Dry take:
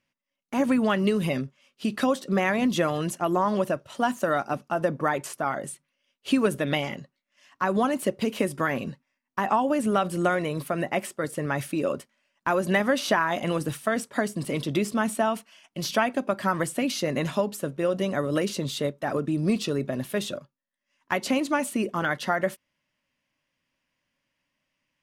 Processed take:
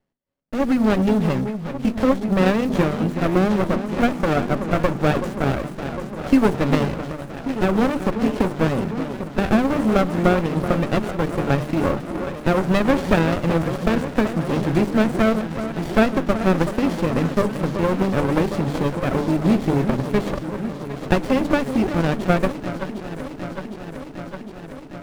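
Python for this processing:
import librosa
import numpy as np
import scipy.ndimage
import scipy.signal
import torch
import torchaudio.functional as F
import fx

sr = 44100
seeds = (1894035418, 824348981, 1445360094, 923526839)

p1 = fx.block_float(x, sr, bits=5)
p2 = fx.lowpass(p1, sr, hz=4000.0, slope=6)
p3 = fx.notch(p2, sr, hz=2900.0, q=15.0)
p4 = fx.rider(p3, sr, range_db=10, speed_s=2.0)
p5 = p3 + F.gain(torch.from_numpy(p4), 1.0).numpy()
p6 = fx.hum_notches(p5, sr, base_hz=50, count=9)
p7 = p6 + fx.echo_alternate(p6, sr, ms=379, hz=1100.0, feedback_pct=85, wet_db=-8.5, dry=0)
y = fx.running_max(p7, sr, window=33)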